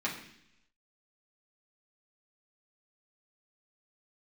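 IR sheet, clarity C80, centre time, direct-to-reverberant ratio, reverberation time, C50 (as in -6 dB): 10.0 dB, 27 ms, -5.5 dB, 0.70 s, 7.0 dB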